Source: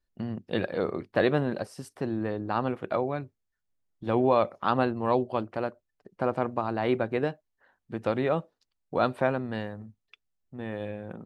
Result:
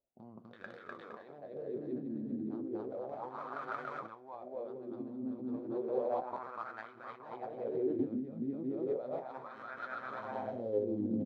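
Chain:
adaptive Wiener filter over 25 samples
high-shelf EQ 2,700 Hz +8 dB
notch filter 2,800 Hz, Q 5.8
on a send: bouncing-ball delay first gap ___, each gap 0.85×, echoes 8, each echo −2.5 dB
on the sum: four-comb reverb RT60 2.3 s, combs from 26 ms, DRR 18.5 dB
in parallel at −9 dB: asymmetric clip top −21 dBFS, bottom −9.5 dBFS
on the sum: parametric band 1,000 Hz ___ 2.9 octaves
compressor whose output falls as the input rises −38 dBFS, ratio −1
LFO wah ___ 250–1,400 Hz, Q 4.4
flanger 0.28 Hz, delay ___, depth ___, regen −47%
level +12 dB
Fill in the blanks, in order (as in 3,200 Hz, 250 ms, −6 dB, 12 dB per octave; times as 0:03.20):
250 ms, −10 dB, 0.33 Hz, 7.1 ms, 8.9 ms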